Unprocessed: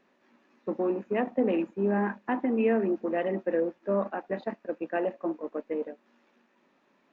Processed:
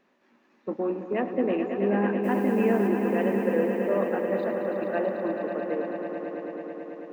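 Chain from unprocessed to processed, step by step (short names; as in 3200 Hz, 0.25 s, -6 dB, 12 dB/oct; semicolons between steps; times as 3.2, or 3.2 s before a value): 2.23–2.87 added noise blue -56 dBFS; swelling echo 0.109 s, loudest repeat 5, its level -9 dB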